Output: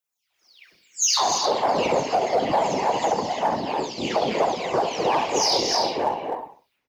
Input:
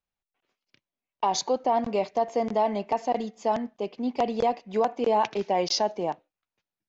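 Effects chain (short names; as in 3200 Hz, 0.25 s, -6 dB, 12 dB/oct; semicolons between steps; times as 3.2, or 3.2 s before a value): spectral delay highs early, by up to 0.42 s; on a send: feedback echo 66 ms, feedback 32%, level -7 dB; on the sum: non-linear reverb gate 0.34 s rising, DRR 6.5 dB; whisperiser; in parallel at -10.5 dB: one-sided clip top -32 dBFS; on the sum: AGC gain up to 15 dB; tilt +3 dB/oct; limiter -7.5 dBFS, peak gain reduction 8.5 dB; gain -4 dB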